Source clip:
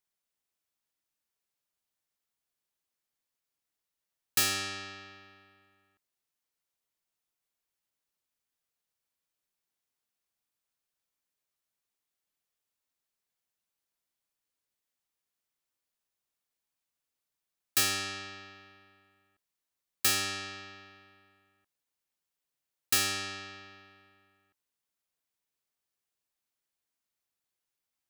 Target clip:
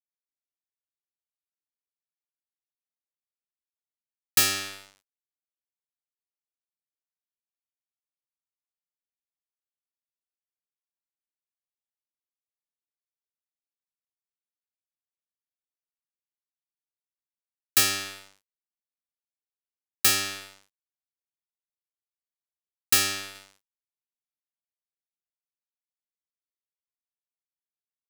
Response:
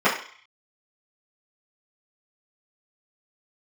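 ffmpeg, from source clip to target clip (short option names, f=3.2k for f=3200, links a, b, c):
-af "asetnsamples=n=441:p=0,asendcmd='23.35 highshelf g 9',highshelf=f=6.3k:g=2,aeval=exprs='sgn(val(0))*max(abs(val(0))-0.0119,0)':c=same,volume=6dB"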